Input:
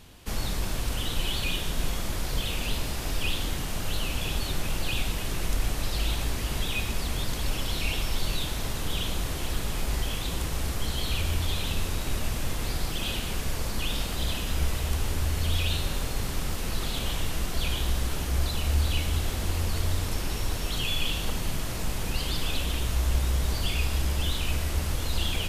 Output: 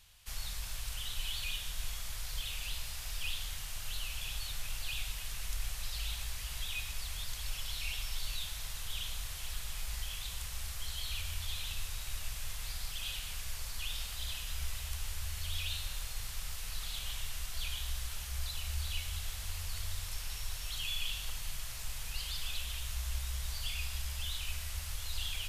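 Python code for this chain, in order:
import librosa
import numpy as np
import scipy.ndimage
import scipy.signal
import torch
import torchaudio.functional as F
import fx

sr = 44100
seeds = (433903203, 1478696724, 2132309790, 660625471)

y = fx.tone_stack(x, sr, knobs='10-0-10')
y = F.gain(torch.from_numpy(y), -5.0).numpy()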